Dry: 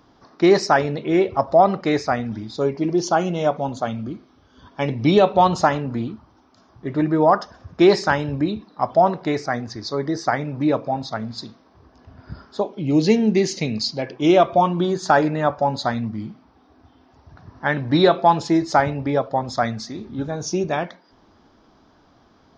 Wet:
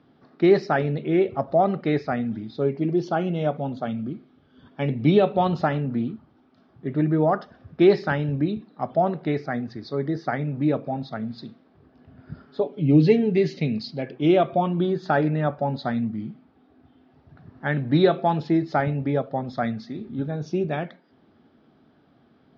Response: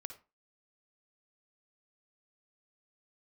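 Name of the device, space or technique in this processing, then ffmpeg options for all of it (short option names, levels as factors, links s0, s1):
guitar cabinet: -filter_complex "[0:a]asettb=1/sr,asplit=3[s0][s1][s2];[s0]atrim=end=12.474[s3];[s1]atrim=start=12.47:end=13.59,asetpts=PTS-STARTPTS,afade=t=in:d=0.004:c=qsin,afade=t=out:st=1.116:d=0.004:c=qsin,aecho=1:1:7:0.62,atrim=end_sample=49392[s4];[s2]atrim=start=13.586[s5];[s3][s4]acrossfade=d=0.004:c1=hsin:c2=qsin[s6];[s6][s5]acrossfade=d=0.004:c1=qsin:c2=hsin,highpass=83,equalizer=f=150:t=q:w=4:g=8,equalizer=f=240:t=q:w=4:g=6,equalizer=f=400:t=q:w=4:g=3,equalizer=f=1000:t=q:w=4:g=-9,lowpass=f=3800:w=0.5412,lowpass=f=3800:w=1.3066,volume=0.562"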